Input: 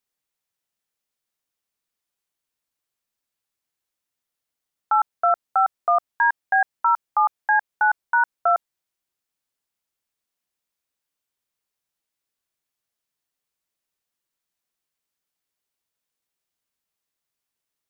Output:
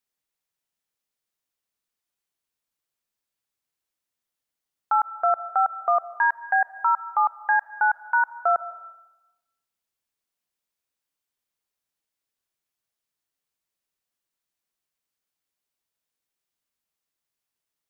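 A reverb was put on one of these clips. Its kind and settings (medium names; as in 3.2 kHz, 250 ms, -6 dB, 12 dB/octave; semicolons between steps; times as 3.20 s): algorithmic reverb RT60 1 s, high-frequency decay 0.85×, pre-delay 105 ms, DRR 16.5 dB; trim -2 dB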